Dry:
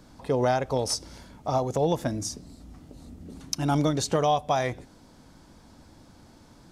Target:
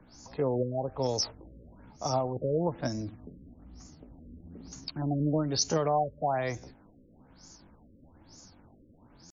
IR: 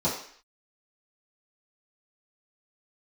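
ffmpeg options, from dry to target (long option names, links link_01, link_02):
-filter_complex "[0:a]acrossover=split=160|430|5700[link_01][link_02][link_03][link_04];[link_04]acompressor=threshold=-60dB:ratio=6[link_05];[link_01][link_02][link_03][link_05]amix=inputs=4:normalize=0,atempo=0.72,aexciter=amount=11.3:drive=8:freq=5400,afftfilt=real='re*lt(b*sr/1024,560*pow(7300/560,0.5+0.5*sin(2*PI*1.1*pts/sr)))':imag='im*lt(b*sr/1024,560*pow(7300/560,0.5+0.5*sin(2*PI*1.1*pts/sr)))':win_size=1024:overlap=0.75,volume=-4dB"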